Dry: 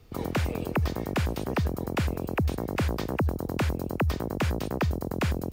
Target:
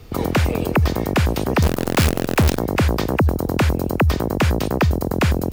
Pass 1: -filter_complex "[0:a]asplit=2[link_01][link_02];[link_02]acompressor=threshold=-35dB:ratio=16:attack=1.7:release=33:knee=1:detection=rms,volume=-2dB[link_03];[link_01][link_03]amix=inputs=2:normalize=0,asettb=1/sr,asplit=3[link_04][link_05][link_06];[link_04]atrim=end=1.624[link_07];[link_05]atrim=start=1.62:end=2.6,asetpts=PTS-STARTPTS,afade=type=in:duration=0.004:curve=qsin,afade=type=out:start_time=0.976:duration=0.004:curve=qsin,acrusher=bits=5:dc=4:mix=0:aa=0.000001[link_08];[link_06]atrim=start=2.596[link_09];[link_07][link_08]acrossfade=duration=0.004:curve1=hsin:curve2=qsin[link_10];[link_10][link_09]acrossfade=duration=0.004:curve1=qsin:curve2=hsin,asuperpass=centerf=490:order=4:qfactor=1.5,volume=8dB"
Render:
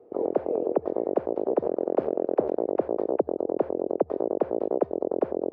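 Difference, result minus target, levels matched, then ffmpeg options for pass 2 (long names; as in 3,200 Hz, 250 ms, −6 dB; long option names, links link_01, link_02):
500 Hz band +7.0 dB
-filter_complex "[0:a]asplit=2[link_01][link_02];[link_02]acompressor=threshold=-35dB:ratio=16:attack=1.7:release=33:knee=1:detection=rms,volume=-2dB[link_03];[link_01][link_03]amix=inputs=2:normalize=0,asettb=1/sr,asplit=3[link_04][link_05][link_06];[link_04]atrim=end=1.624[link_07];[link_05]atrim=start=1.62:end=2.6,asetpts=PTS-STARTPTS,afade=type=in:duration=0.004:curve=qsin,afade=type=out:start_time=0.976:duration=0.004:curve=qsin,acrusher=bits=5:dc=4:mix=0:aa=0.000001[link_08];[link_06]atrim=start=2.596[link_09];[link_07][link_08]acrossfade=duration=0.004:curve1=hsin:curve2=qsin[link_10];[link_10][link_09]acrossfade=duration=0.004:curve1=qsin:curve2=hsin,volume=8dB"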